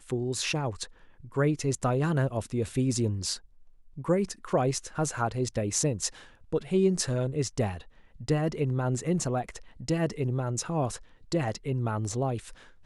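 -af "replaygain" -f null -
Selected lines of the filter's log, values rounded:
track_gain = +10.6 dB
track_peak = 0.202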